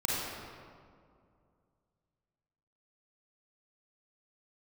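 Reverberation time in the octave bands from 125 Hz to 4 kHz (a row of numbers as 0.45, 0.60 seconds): 2.9, 2.7, 2.4, 2.1, 1.5, 1.2 seconds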